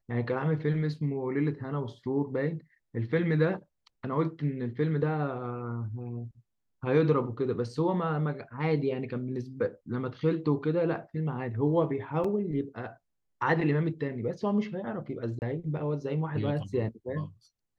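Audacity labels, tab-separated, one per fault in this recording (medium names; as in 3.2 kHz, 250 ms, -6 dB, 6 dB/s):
12.240000	12.240000	dropout 4.7 ms
15.390000	15.420000	dropout 29 ms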